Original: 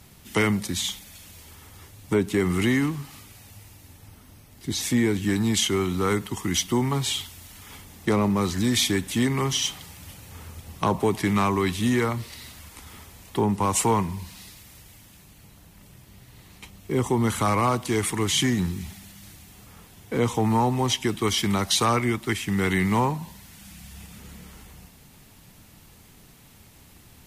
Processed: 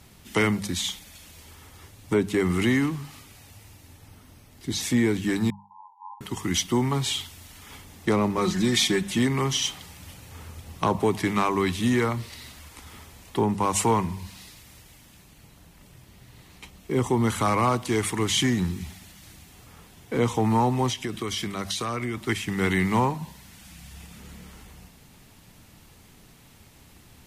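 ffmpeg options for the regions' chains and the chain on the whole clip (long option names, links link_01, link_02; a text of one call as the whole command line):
ffmpeg -i in.wav -filter_complex "[0:a]asettb=1/sr,asplit=3[link_01][link_02][link_03];[link_01]atrim=end=5.504[link_04];[link_02]atrim=start=5.5:end=6.21,asetpts=PTS-STARTPTS,afade=type=in:duration=0.004:curve=qsin,afade=type=out:start_time=0.706:duration=0.004:curve=qsin,aeval=exprs='(tanh(6.31*val(0)+0.45)-tanh(0.45))/6.31':channel_layout=same,asuperpass=centerf=920:order=20:qfactor=3.9[link_05];[link_03]atrim=start=6.206[link_06];[link_04][link_05]acrossfade=duration=0.004:curve1=hsin:curve2=qsin[link_07];[link_07][link_06]acrossfade=duration=0.004:curve1=qsin:curve2=hsin,asettb=1/sr,asplit=3[link_08][link_09][link_10];[link_08]atrim=end=8.374[link_11];[link_09]atrim=start=8.37:end=9.18,asetpts=PTS-STARTPTS,afade=type=in:duration=0.004:curve=qsin,afade=type=out:start_time=0.806:duration=0.004:curve=qsin,highshelf=frequency=11000:gain=-6,aecho=1:1:5.5:0.7,atrim=end_sample=35721[link_12];[link_10]atrim=start=9.176[link_13];[link_11][link_12]acrossfade=duration=0.004:curve1=hsin:curve2=qsin[link_14];[link_14][link_13]acrossfade=duration=0.004:curve1=qsin:curve2=hsin,asettb=1/sr,asplit=3[link_15][link_16][link_17];[link_15]atrim=end=20.894[link_18];[link_16]atrim=start=20.89:end=22.17,asetpts=PTS-STARTPTS,afade=type=in:duration=0.004:curve=qsin,afade=type=out:start_time=1.276:duration=0.004:curve=qsin,bandreject=frequency=870:width=5.7,acompressor=threshold=-25dB:ratio=6:attack=3.2:release=140:knee=1:detection=peak[link_19];[link_17]atrim=start=22.166[link_20];[link_18][link_19]acrossfade=duration=0.004:curve1=hsin:curve2=qsin[link_21];[link_21][link_20]acrossfade=duration=0.004:curve1=qsin:curve2=hsin,highshelf=frequency=11000:gain=-6.5,bandreject=frequency=50:width_type=h:width=6,bandreject=frequency=100:width_type=h:width=6,bandreject=frequency=150:width_type=h:width=6,bandreject=frequency=200:width_type=h:width=6" out.wav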